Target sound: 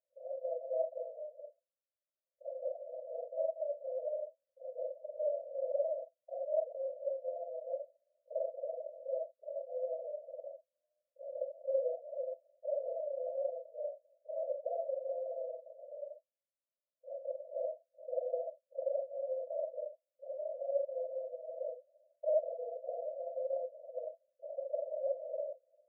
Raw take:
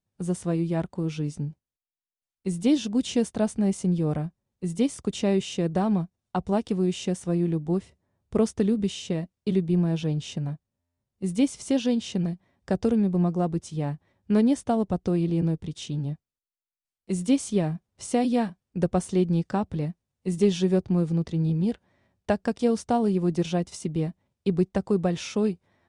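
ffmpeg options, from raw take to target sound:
ffmpeg -i in.wav -filter_complex "[0:a]afftfilt=real='re':imag='-im':win_size=4096:overlap=0.75,aemphasis=mode=reproduction:type=75fm,asplit=2[link_01][link_02];[link_02]alimiter=level_in=2dB:limit=-24dB:level=0:latency=1:release=235,volume=-2dB,volume=-0.5dB[link_03];[link_01][link_03]amix=inputs=2:normalize=0,acontrast=78,aeval=exprs='0.473*(cos(1*acos(clip(val(0)/0.473,-1,1)))-cos(1*PI/2))+0.00668*(cos(3*acos(clip(val(0)/0.473,-1,1)))-cos(3*PI/2))+0.0211*(cos(6*acos(clip(val(0)/0.473,-1,1)))-cos(6*PI/2))':channel_layout=same,aresample=16000,asoftclip=type=hard:threshold=-19.5dB,aresample=44100,flanger=delay=1.4:depth=6.6:regen=54:speed=1.9:shape=triangular,acrusher=samples=27:mix=1:aa=0.000001,asuperpass=centerf=580:order=12:qfactor=3.5,volume=3dB" out.wav

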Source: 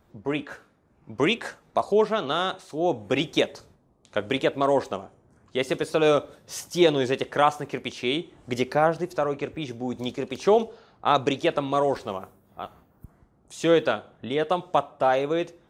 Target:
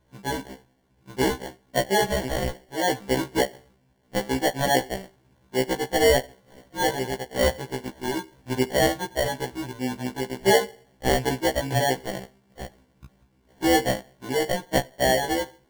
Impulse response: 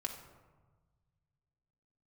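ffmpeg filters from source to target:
-filter_complex "[0:a]lowpass=2200,asettb=1/sr,asplit=3[link_01][link_02][link_03];[link_01]atrim=end=6.724[link_04];[link_02]atrim=start=6.72:end=7.47,asetpts=PTS-STARTPTS,afade=type=in:duration=0.004:curve=qsin,afade=type=out:start_time=0.746:duration=0.004:curve=qsin,equalizer=frequency=200:width_type=o:width=2.4:gain=-7[link_05];[link_03]atrim=start=7.466[link_06];[link_04][link_05]acrossfade=duration=0.004:curve1=hsin:curve2=qsin[link_07];[link_07][link_06]acrossfade=duration=0.004:curve1=qsin:curve2=hsin,asplit=2[link_08][link_09];[link_09]aeval=exprs='sgn(val(0))*max(abs(val(0))-0.00631,0)':channel_layout=same,volume=-7.5dB[link_10];[link_08][link_10]amix=inputs=2:normalize=0,acrusher=samples=35:mix=1:aa=0.000001,afftfilt=real='re*1.73*eq(mod(b,3),0)':imag='im*1.73*eq(mod(b,3),0)':win_size=2048:overlap=0.75"

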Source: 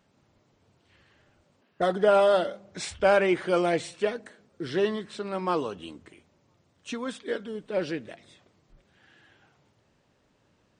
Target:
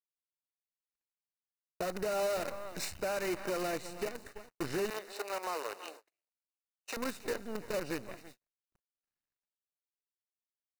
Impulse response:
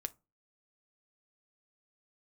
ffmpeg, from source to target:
-filter_complex "[0:a]aecho=1:1:326:0.112,acompressor=threshold=-28dB:ratio=3,acrusher=bits=6:dc=4:mix=0:aa=0.000001,alimiter=limit=-23.5dB:level=0:latency=1:release=244,asettb=1/sr,asplit=3[link_01][link_02][link_03];[link_01]atrim=end=4.904[link_04];[link_02]atrim=start=4.9:end=6.97,asetpts=PTS-STARTPTS,afade=type=in:duration=0.004:curve=qsin,afade=type=out:start_time=2.066:duration=0.004:curve=qsin,highpass=frequency=440:width=0.5412,highpass=frequency=440:width=1.3066[link_05];[link_03]atrim=start=6.966[link_06];[link_04][link_05]acrossfade=duration=0.004:curve1=hsin:curve2=qsin[link_07];[link_07][link_06]acrossfade=duration=0.004:curve1=qsin:curve2=hsin,asoftclip=type=tanh:threshold=-26.5dB,asuperstop=centerf=3300:order=4:qfactor=5.3,aecho=1:1:223:0.075,agate=range=-37dB:threshold=-50dB:ratio=16:detection=peak"

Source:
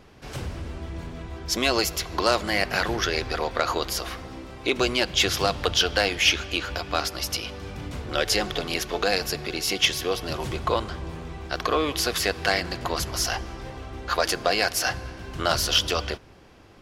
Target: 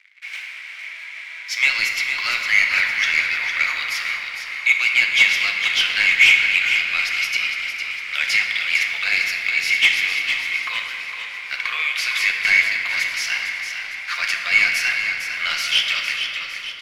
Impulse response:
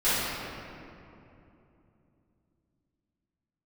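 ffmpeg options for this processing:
-filter_complex "[0:a]acrusher=bits=6:mix=0:aa=0.5,highpass=frequency=2200:width_type=q:width=9.4,asplit=2[link_01][link_02];[link_02]highpass=frequency=720:poles=1,volume=8dB,asoftclip=type=tanh:threshold=-6dB[link_03];[link_01][link_03]amix=inputs=2:normalize=0,lowpass=frequency=3200:poles=1,volume=-6dB,asplit=7[link_04][link_05][link_06][link_07][link_08][link_09][link_10];[link_05]adelay=456,afreqshift=-31,volume=-8dB[link_11];[link_06]adelay=912,afreqshift=-62,volume=-13.8dB[link_12];[link_07]adelay=1368,afreqshift=-93,volume=-19.7dB[link_13];[link_08]adelay=1824,afreqshift=-124,volume=-25.5dB[link_14];[link_09]adelay=2280,afreqshift=-155,volume=-31.4dB[link_15];[link_10]adelay=2736,afreqshift=-186,volume=-37.2dB[link_16];[link_04][link_11][link_12][link_13][link_14][link_15][link_16]amix=inputs=7:normalize=0,asplit=2[link_17][link_18];[1:a]atrim=start_sample=2205[link_19];[link_18][link_19]afir=irnorm=-1:irlink=0,volume=-16.5dB[link_20];[link_17][link_20]amix=inputs=2:normalize=0,volume=-3dB"

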